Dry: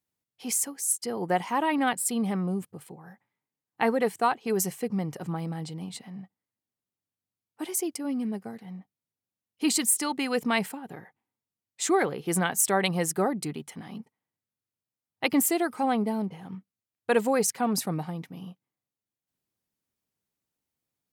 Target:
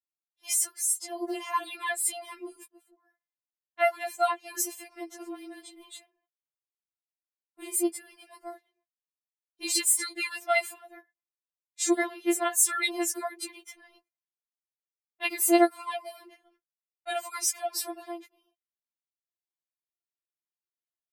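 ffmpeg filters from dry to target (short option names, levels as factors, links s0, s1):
-filter_complex "[0:a]highpass=f=550:p=1,agate=range=0.126:threshold=0.00562:ratio=16:detection=peak,asettb=1/sr,asplit=3[s0][s1][s2];[s0]atrim=end=5.624[s3];[s1]atrim=start=5.62:end=8.09,asetpts=PTS-STARTPTS,afade=t=in:d=0.004:c=qsin,afade=t=out:st=2.466:d=0.004:c=qsin,equalizer=f=5500:w=3.1:g=-10.5[s4];[s2]atrim=start=8.086[s5];[s3][s4]acrossfade=d=0.004:c1=hsin:c2=qsin[s6];[s6][s5]acrossfade=d=0.004:c1=qsin:c2=hsin,afftfilt=real='re*4*eq(mod(b,16),0)':imag='im*4*eq(mod(b,16),0)':win_size=2048:overlap=0.75,volume=1.41"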